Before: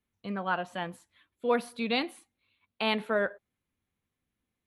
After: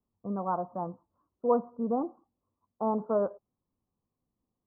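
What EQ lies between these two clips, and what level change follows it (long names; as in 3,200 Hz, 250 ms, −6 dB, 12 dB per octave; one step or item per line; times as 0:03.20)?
Butterworth low-pass 1,200 Hz 72 dB per octave
parametric band 77 Hz −6 dB 0.36 octaves
+1.5 dB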